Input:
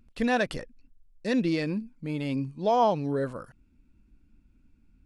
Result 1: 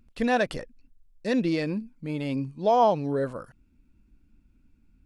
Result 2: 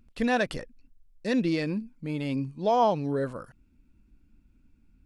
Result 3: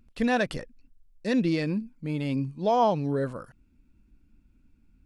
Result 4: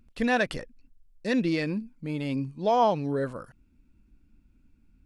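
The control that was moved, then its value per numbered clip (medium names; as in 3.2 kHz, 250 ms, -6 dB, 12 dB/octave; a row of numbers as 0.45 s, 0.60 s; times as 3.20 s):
dynamic bell, frequency: 630 Hz, 7.9 kHz, 150 Hz, 2 kHz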